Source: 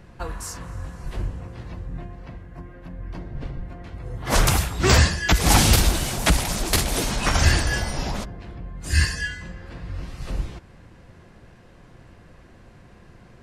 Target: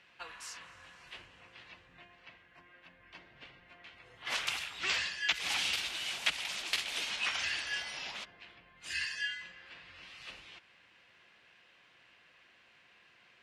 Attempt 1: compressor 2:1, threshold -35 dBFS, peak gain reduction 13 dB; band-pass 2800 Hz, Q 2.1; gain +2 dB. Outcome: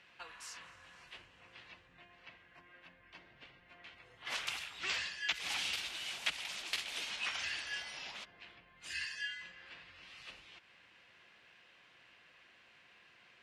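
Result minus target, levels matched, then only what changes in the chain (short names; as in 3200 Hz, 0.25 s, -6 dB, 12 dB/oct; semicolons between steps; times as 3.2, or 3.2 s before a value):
compressor: peak gain reduction +4.5 dB
change: compressor 2:1, threshold -26 dBFS, peak gain reduction 8.5 dB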